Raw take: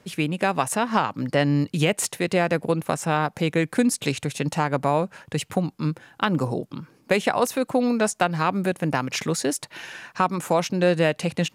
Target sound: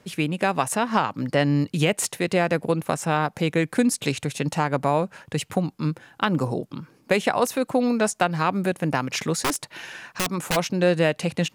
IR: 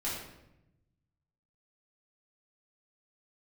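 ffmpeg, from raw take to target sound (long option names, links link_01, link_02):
-filter_complex "[0:a]asplit=3[link_01][link_02][link_03];[link_01]afade=type=out:start_time=9.41:duration=0.02[link_04];[link_02]aeval=exprs='(mod(7.08*val(0)+1,2)-1)/7.08':channel_layout=same,afade=type=in:start_time=9.41:duration=0.02,afade=type=out:start_time=10.55:duration=0.02[link_05];[link_03]afade=type=in:start_time=10.55:duration=0.02[link_06];[link_04][link_05][link_06]amix=inputs=3:normalize=0"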